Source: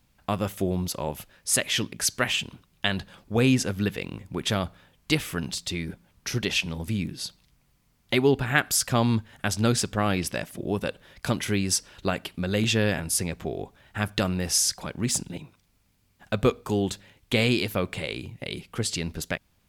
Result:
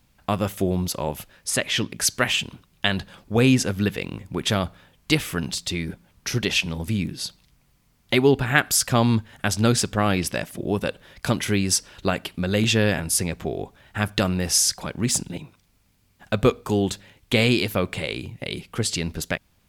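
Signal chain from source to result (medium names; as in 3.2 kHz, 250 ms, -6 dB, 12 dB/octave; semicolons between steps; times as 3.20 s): 1.49–1.89 s: treble shelf 4.9 kHz -> 8.6 kHz -9.5 dB; trim +3.5 dB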